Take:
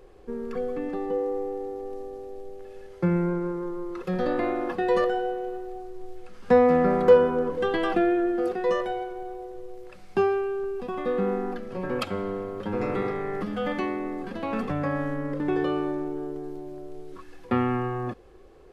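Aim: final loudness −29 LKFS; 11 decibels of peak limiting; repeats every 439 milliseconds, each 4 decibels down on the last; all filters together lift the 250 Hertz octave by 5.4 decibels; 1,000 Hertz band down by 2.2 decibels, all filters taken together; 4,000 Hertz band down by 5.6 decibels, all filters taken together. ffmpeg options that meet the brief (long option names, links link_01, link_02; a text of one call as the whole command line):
ffmpeg -i in.wav -af "equalizer=frequency=250:width_type=o:gain=7.5,equalizer=frequency=1000:width_type=o:gain=-3.5,equalizer=frequency=4000:width_type=o:gain=-8,alimiter=limit=-16.5dB:level=0:latency=1,aecho=1:1:439|878|1317|1756|2195|2634|3073|3512|3951:0.631|0.398|0.25|0.158|0.0994|0.0626|0.0394|0.0249|0.0157,volume=-4dB" out.wav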